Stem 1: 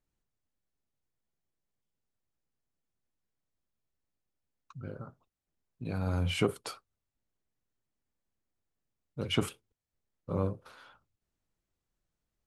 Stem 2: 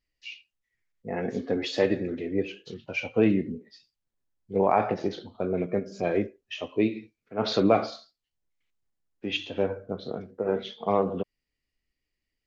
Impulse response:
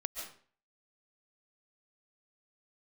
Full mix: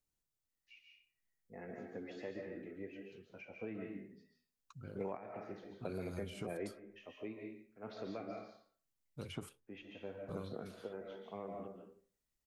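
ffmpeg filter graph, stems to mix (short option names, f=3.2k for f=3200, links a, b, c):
-filter_complex "[0:a]volume=-7.5dB,asplit=2[a][b];[1:a]highshelf=f=2.7k:t=q:w=1.5:g=-11,adelay=450,volume=-5.5dB,asplit=2[c][d];[d]volume=-12.5dB[e];[b]apad=whole_len=569686[f];[c][f]sidechaingate=range=-33dB:threshold=-60dB:ratio=16:detection=peak[g];[2:a]atrim=start_sample=2205[h];[e][h]afir=irnorm=-1:irlink=0[i];[a][g][i]amix=inputs=3:normalize=0,highshelf=f=3.8k:g=11,acrossover=split=630|1600[j][k][l];[j]acompressor=threshold=-42dB:ratio=4[m];[k]acompressor=threshold=-57dB:ratio=4[n];[l]acompressor=threshold=-57dB:ratio=4[o];[m][n][o]amix=inputs=3:normalize=0"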